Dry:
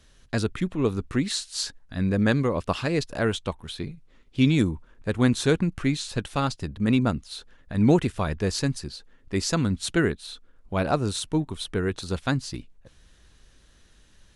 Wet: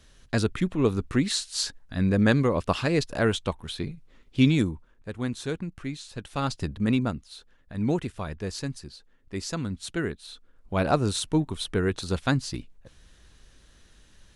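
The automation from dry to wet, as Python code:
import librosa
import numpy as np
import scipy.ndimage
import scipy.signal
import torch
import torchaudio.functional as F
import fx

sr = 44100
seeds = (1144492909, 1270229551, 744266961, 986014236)

y = fx.gain(x, sr, db=fx.line((4.4, 1.0), (5.1, -9.5), (6.15, -9.5), (6.62, 2.0), (7.27, -7.0), (9.98, -7.0), (10.89, 1.0)))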